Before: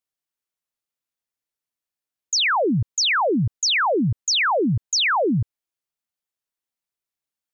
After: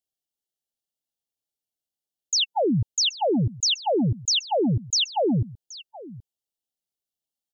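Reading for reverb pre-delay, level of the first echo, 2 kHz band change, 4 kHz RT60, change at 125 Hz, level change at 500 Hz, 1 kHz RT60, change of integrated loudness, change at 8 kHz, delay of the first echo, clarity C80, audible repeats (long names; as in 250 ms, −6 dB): no reverb audible, −18.5 dB, −16.0 dB, no reverb audible, −1.5 dB, −1.5 dB, no reverb audible, −3.0 dB, can't be measured, 776 ms, no reverb audible, 1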